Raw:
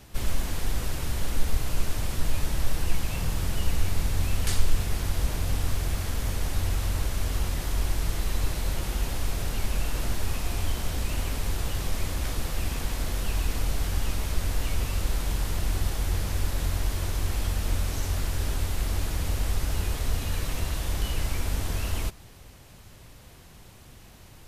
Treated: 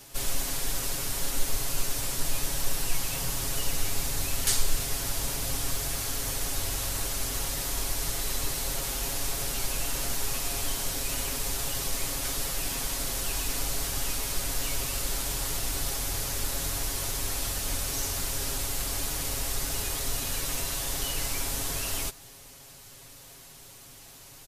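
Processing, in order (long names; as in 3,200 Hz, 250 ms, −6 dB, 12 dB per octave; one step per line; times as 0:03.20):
bass and treble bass −7 dB, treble +9 dB
comb filter 7.3 ms
level −1.5 dB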